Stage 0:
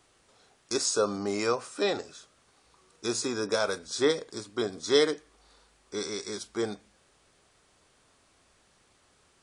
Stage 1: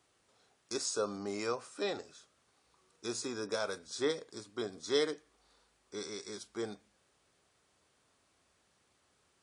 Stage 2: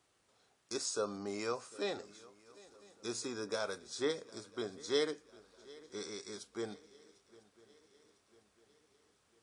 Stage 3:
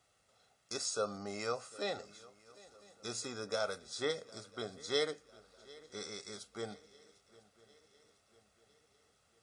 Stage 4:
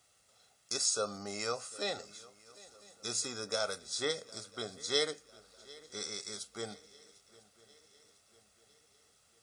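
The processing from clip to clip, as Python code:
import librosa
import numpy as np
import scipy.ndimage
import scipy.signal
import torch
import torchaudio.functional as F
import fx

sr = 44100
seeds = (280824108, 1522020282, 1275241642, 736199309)

y1 = scipy.signal.sosfilt(scipy.signal.butter(2, 61.0, 'highpass', fs=sr, output='sos'), x)
y1 = F.gain(torch.from_numpy(y1), -8.0).numpy()
y2 = fx.echo_swing(y1, sr, ms=999, ratio=3, feedback_pct=49, wet_db=-22.0)
y2 = F.gain(torch.from_numpy(y2), -2.0).numpy()
y3 = y2 + 0.54 * np.pad(y2, (int(1.5 * sr / 1000.0), 0))[:len(y2)]
y4 = fx.high_shelf(y3, sr, hz=3700.0, db=10.0)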